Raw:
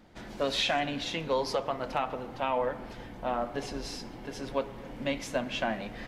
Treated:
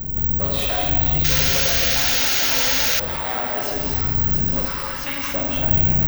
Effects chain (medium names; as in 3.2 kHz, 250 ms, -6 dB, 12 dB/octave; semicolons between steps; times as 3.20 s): one-sided wavefolder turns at -26 dBFS; wind noise 94 Hz -29 dBFS; 2.87–3.74 s: tilt EQ +2.5 dB/octave; two-band feedback delay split 850 Hz, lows 96 ms, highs 672 ms, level -3 dB; gated-style reverb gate 350 ms flat, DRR -1.5 dB; 1.24–3.00 s: painted sound noise 1.3–6.9 kHz -20 dBFS; 4.65–5.34 s: resonant low shelf 780 Hz -9 dB, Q 1.5; careless resampling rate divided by 2×, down filtered, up zero stuff; level flattener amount 50%; trim -6 dB